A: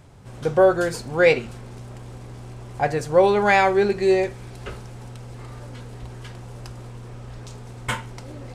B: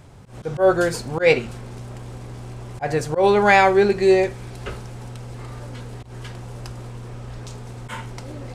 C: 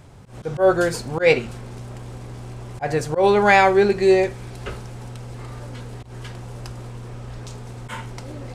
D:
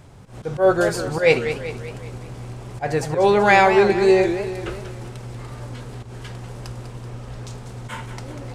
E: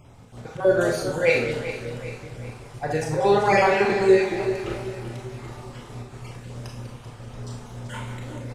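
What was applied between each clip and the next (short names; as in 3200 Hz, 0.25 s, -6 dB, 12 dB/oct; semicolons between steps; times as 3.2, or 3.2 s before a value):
auto swell 0.122 s; gain +3 dB
nothing audible
warbling echo 0.191 s, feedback 52%, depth 194 cents, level -10 dB
random spectral dropouts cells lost 28%; feedback echo 0.389 s, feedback 47%, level -13 dB; Schroeder reverb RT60 0.5 s, combs from 26 ms, DRR 0.5 dB; gain -4 dB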